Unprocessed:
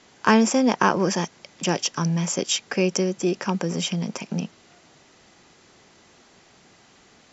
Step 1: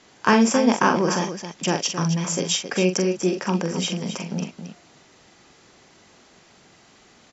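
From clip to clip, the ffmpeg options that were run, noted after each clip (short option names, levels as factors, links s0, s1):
-af "aecho=1:1:43.73|268.2:0.447|0.316"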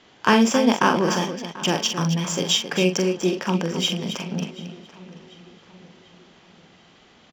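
-filter_complex "[0:a]equalizer=f=3200:w=3.3:g=7.5,adynamicsmooth=sensitivity=6.5:basefreq=4700,asplit=2[s0][s1];[s1]adelay=738,lowpass=f=4200:p=1,volume=0.126,asplit=2[s2][s3];[s3]adelay=738,lowpass=f=4200:p=1,volume=0.52,asplit=2[s4][s5];[s5]adelay=738,lowpass=f=4200:p=1,volume=0.52,asplit=2[s6][s7];[s7]adelay=738,lowpass=f=4200:p=1,volume=0.52[s8];[s0][s2][s4][s6][s8]amix=inputs=5:normalize=0"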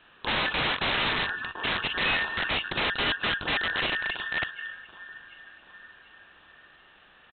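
-af "afftfilt=real='real(if(between(b,1,1012),(2*floor((b-1)/92)+1)*92-b,b),0)':imag='imag(if(between(b,1,1012),(2*floor((b-1)/92)+1)*92-b,b),0)*if(between(b,1,1012),-1,1)':win_size=2048:overlap=0.75,aresample=8000,aeval=exprs='(mod(8.91*val(0)+1,2)-1)/8.91':c=same,aresample=44100,volume=0.75"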